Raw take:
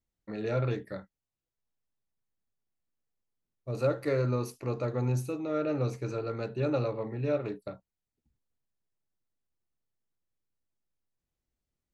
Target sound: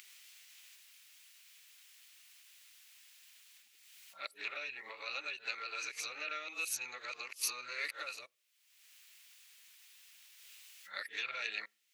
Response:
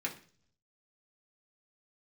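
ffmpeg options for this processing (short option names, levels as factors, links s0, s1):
-filter_complex "[0:a]areverse,acompressor=threshold=0.02:ratio=4,alimiter=level_in=2:limit=0.0631:level=0:latency=1:release=372,volume=0.501,acompressor=mode=upward:threshold=0.00447:ratio=2.5,highpass=f=2500:t=q:w=1.9,asplit=2[s0][s1];[1:a]atrim=start_sample=2205,lowpass=1600[s2];[s1][s2]afir=irnorm=-1:irlink=0,volume=0.0708[s3];[s0][s3]amix=inputs=2:normalize=0,volume=4.73"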